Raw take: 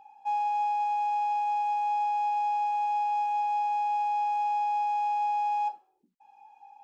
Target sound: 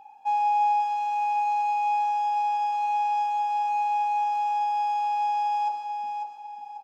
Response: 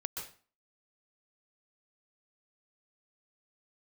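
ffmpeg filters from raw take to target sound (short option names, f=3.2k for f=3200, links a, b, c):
-filter_complex "[0:a]aecho=1:1:546|1092|1638|2184:0.447|0.143|0.0457|0.0146,asplit=2[a][b];[1:a]atrim=start_sample=2205[c];[b][c]afir=irnorm=-1:irlink=0,volume=-2.5dB[d];[a][d]amix=inputs=2:normalize=0"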